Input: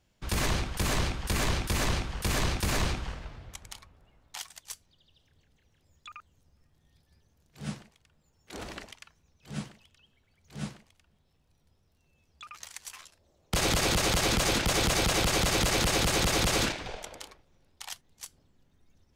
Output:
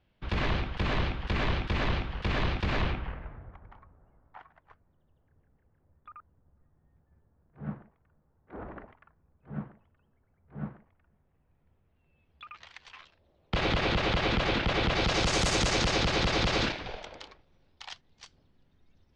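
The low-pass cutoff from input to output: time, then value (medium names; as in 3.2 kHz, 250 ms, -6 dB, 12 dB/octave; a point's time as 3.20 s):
low-pass 24 dB/octave
2.79 s 3.6 kHz
3.55 s 1.5 kHz
10.63 s 1.5 kHz
12.68 s 3.7 kHz
14.90 s 3.7 kHz
15.44 s 8.3 kHz
16.10 s 4.8 kHz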